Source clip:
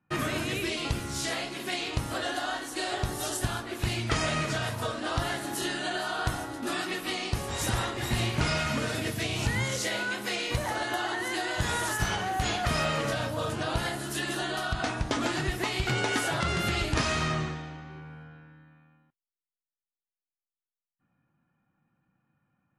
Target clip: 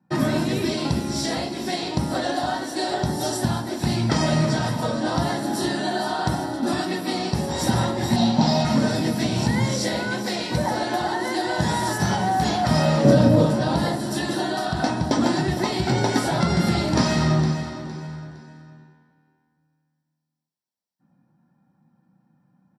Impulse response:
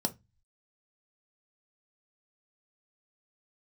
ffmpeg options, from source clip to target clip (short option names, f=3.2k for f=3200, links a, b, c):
-filter_complex "[0:a]asettb=1/sr,asplit=3[a][b][c];[a]atrim=end=13.044[d];[b]atrim=start=13.04:end=13.45,asetpts=PTS-STARTPTS,afade=t=in:d=0.004:c=qsin,afade=t=out:st=0.406:d=0.004:c=qsin,lowshelf=f=610:t=q:w=1.5:g=9[e];[c]atrim=start=13.446[f];[d][e]acrossfade=d=0.004:c1=hsin:c2=qsin[g];[g][f]acrossfade=d=0.004:c1=qsin:c2=hsin,bandreject=f=50:t=h:w=6,bandreject=f=100:t=h:w=6,bandreject=f=150:t=h:w=6,bandreject=f=200:t=h:w=6,bandreject=f=250:t=h:w=6,bandreject=f=300:t=h:w=6[h];[1:a]atrim=start_sample=2205,atrim=end_sample=3528[i];[h][i]afir=irnorm=-1:irlink=0,asoftclip=type=hard:threshold=-7dB,asettb=1/sr,asplit=3[j][k][l];[j]atrim=end=8.164[m];[k]atrim=start=8.16:end=8.65,asetpts=PTS-STARTPTS,afade=t=in:d=0.004:c=qsin,afade=t=out:st=0.486:d=0.004:c=qsin,highpass=170,equalizer=f=230:t=q:w=4:g=8,equalizer=f=340:t=q:w=4:g=-8,equalizer=f=780:t=q:w=4:g=8,equalizer=f=1.4k:t=q:w=4:g=-8,equalizer=f=2.2k:t=q:w=4:g=-8,equalizer=f=3.9k:t=q:w=4:g=5,lowpass=f=6.9k:w=0.5412,lowpass=f=6.9k:w=1.3066[n];[l]atrim=start=8.646[o];[m][n]acrossfade=d=0.004:c1=hsin:c2=qsin[p];[p][o]acrossfade=d=0.004:c1=qsin:c2=hsin,aecho=1:1:461|922|1383:0.251|0.0779|0.0241"